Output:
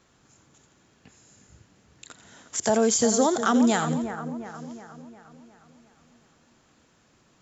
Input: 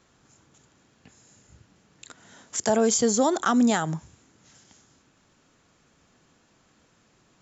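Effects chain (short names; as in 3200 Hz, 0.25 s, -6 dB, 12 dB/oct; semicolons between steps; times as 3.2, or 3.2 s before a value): split-band echo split 2100 Hz, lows 0.358 s, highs 86 ms, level -9.5 dB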